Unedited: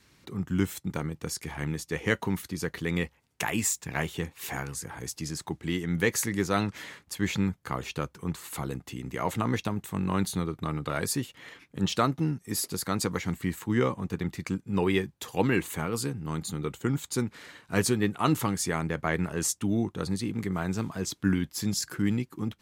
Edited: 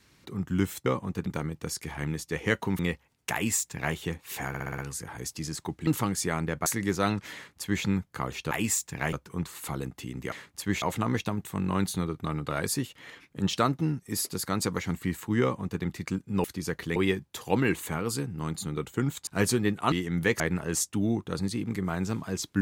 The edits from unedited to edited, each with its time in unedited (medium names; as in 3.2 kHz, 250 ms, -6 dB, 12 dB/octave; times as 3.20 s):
2.39–2.91 s: move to 14.83 s
3.45–4.07 s: copy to 8.02 s
4.60 s: stutter 0.06 s, 6 plays
5.69–6.17 s: swap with 18.29–19.08 s
6.85–7.35 s: copy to 9.21 s
13.81–14.21 s: copy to 0.86 s
17.14–17.64 s: delete